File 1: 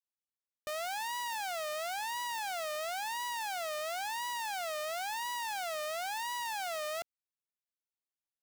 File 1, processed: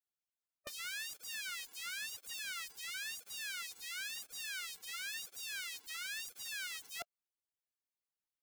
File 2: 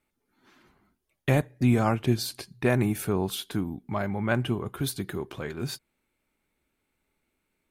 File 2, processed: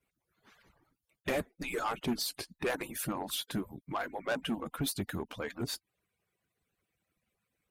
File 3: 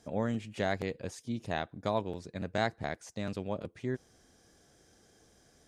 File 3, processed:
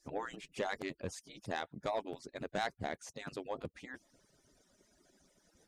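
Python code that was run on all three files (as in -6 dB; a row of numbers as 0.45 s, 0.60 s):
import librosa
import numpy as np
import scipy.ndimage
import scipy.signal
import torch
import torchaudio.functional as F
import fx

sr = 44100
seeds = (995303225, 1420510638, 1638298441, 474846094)

y = fx.hpss_only(x, sr, part='percussive')
y = 10.0 ** (-26.0 / 20.0) * np.tanh(y / 10.0 ** (-26.0 / 20.0))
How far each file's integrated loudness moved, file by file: -5.5 LU, -8.0 LU, -5.5 LU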